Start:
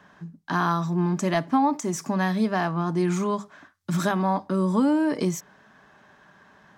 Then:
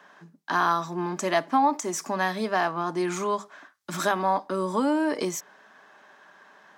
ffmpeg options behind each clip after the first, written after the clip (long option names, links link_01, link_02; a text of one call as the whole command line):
ffmpeg -i in.wav -af "highpass=380,volume=2dB" out.wav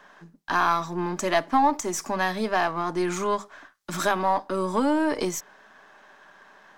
ffmpeg -i in.wav -af "aeval=exprs='if(lt(val(0),0),0.708*val(0),val(0))':channel_layout=same,volume=2.5dB" out.wav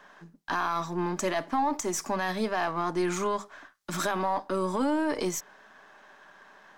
ffmpeg -i in.wav -af "alimiter=limit=-17.5dB:level=0:latency=1:release=16,volume=-1.5dB" out.wav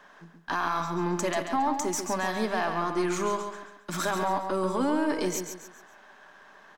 ffmpeg -i in.wav -af "aecho=1:1:137|274|411|548:0.447|0.17|0.0645|0.0245" out.wav